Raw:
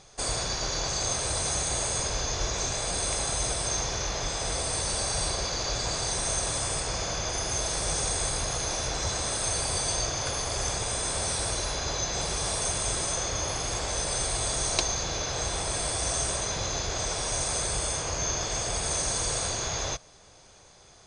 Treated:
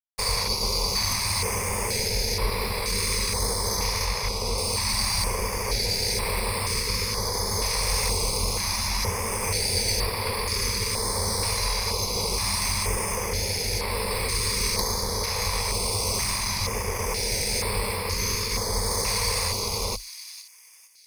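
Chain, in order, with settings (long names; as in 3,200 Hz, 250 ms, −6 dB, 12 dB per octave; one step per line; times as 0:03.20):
stylus tracing distortion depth 0.084 ms
fuzz pedal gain 27 dB, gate −35 dBFS
0:04.05–0:04.58: high-shelf EQ 8,500 Hz −9 dB
on a send: delay with a high-pass on its return 456 ms, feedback 47%, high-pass 3,100 Hz, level −11 dB
on the sum: tape wow and flutter 28 cents
EQ curve with evenly spaced ripples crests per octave 0.88, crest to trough 14 dB
notch on a step sequencer 2.1 Hz 300–6,400 Hz
level −7 dB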